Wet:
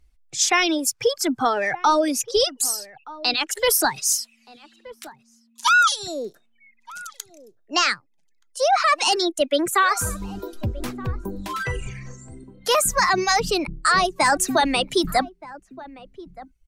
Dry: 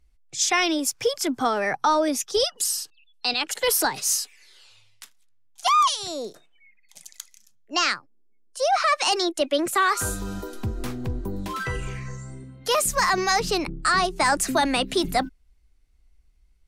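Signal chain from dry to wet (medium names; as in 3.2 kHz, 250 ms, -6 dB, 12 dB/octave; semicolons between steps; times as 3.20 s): reverb removal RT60 1.7 s; 4.13–5.92 s: frequency shift +230 Hz; echo from a far wall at 210 m, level -18 dB; trim +3 dB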